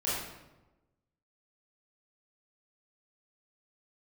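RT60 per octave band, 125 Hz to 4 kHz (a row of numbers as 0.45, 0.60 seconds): 1.3, 1.2, 1.1, 1.0, 0.80, 0.70 seconds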